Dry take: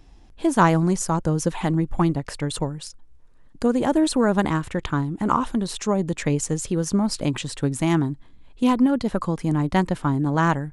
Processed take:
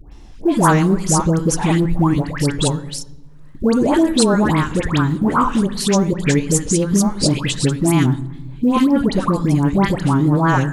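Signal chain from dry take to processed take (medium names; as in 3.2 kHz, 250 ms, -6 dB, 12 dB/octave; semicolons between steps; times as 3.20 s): peaking EQ 710 Hz -3.5 dB 0.33 oct; in parallel at -2 dB: compressor with a negative ratio -25 dBFS, ratio -1; on the sum: wow and flutter 81 cents; phase dispersion highs, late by 120 ms, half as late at 1.2 kHz; short-mantissa float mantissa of 6-bit; on a send at -16 dB: reverberation RT60 1.1 s, pre-delay 3 ms; on the sum: trim +2.5 dB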